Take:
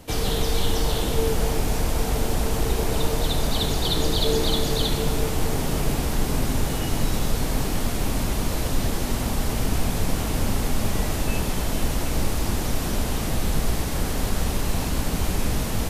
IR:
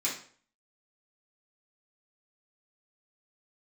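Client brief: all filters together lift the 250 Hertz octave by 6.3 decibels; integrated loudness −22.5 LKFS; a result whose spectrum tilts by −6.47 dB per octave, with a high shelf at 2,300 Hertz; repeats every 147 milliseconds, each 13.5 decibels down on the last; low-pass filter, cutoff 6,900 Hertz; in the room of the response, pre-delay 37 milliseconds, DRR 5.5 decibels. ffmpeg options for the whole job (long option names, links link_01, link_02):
-filter_complex "[0:a]lowpass=6900,equalizer=frequency=250:width_type=o:gain=8,highshelf=frequency=2300:gain=-7,aecho=1:1:147|294:0.211|0.0444,asplit=2[link_01][link_02];[1:a]atrim=start_sample=2205,adelay=37[link_03];[link_02][link_03]afir=irnorm=-1:irlink=0,volume=-11.5dB[link_04];[link_01][link_04]amix=inputs=2:normalize=0,volume=0.5dB"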